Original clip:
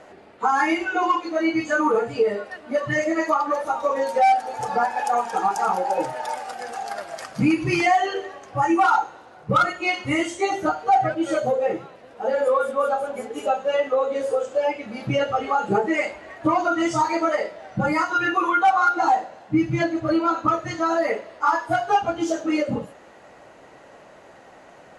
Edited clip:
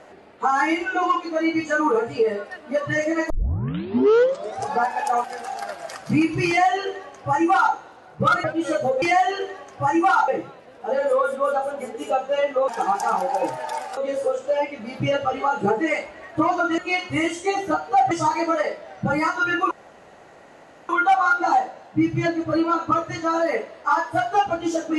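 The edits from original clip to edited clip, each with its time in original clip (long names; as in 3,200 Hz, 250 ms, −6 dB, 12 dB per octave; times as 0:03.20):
0:03.30: tape start 1.44 s
0:05.24–0:06.53: move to 0:14.04
0:07.77–0:09.03: duplicate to 0:11.64
0:09.73–0:11.06: move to 0:16.85
0:18.45: splice in room tone 1.18 s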